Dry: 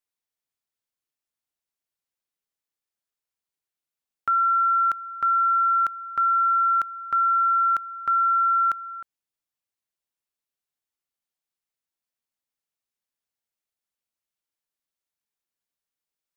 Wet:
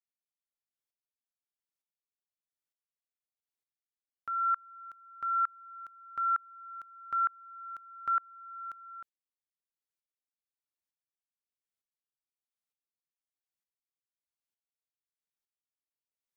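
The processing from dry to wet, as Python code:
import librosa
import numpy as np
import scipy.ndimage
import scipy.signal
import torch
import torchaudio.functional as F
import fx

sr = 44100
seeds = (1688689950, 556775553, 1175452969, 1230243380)

y = fx.tremolo_decay(x, sr, direction='swelling', hz=1.1, depth_db=32)
y = y * 10.0 ** (-5.0 / 20.0)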